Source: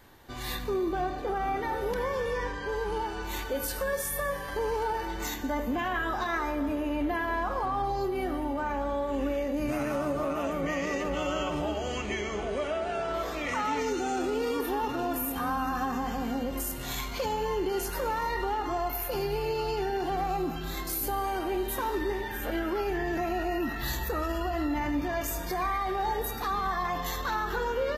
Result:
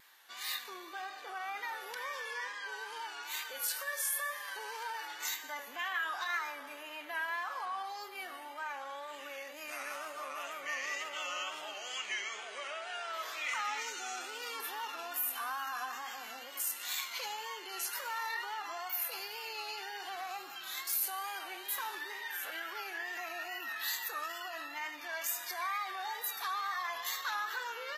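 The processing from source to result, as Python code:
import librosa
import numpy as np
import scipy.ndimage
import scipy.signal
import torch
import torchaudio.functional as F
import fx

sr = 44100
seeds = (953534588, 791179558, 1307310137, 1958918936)

y = scipy.signal.sosfilt(scipy.signal.butter(2, 1500.0, 'highpass', fs=sr, output='sos'), x)
y = fx.wow_flutter(y, sr, seeds[0], rate_hz=2.1, depth_cents=67.0)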